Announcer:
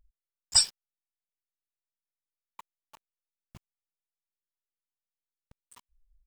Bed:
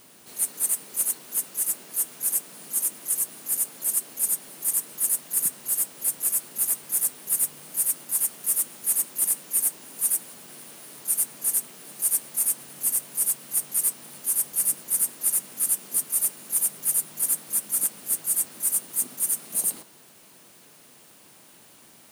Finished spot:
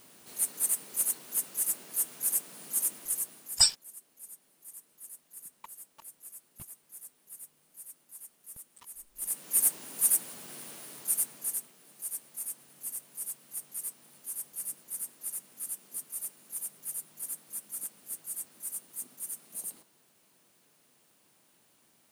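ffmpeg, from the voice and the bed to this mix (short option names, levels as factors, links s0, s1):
-filter_complex "[0:a]adelay=3050,volume=0.944[s0];[1:a]volume=8.41,afade=t=out:st=2.92:d=0.81:silence=0.105925,afade=t=in:st=9.14:d=0.49:silence=0.0749894,afade=t=out:st=10.69:d=1.05:silence=0.223872[s1];[s0][s1]amix=inputs=2:normalize=0"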